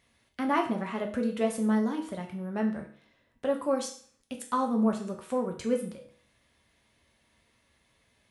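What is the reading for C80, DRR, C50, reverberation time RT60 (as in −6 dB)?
13.0 dB, 2.0 dB, 9.0 dB, 0.50 s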